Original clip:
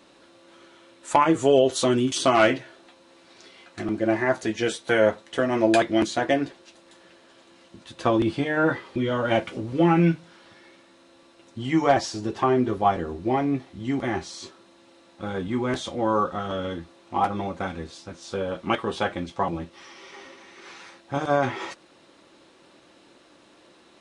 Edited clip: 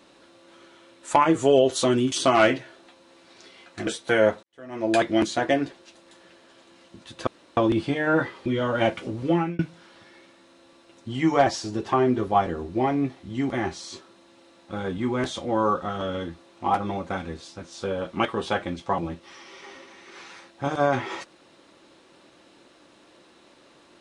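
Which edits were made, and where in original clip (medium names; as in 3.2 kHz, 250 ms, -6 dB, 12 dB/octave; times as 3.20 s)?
3.87–4.67 s: delete
5.23–5.82 s: fade in quadratic
8.07 s: insert room tone 0.30 s
9.75–10.09 s: fade out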